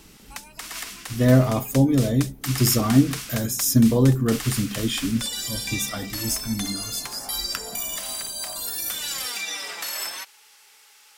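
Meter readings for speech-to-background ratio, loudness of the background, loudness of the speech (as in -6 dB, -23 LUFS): 8.0 dB, -30.0 LUFS, -22.0 LUFS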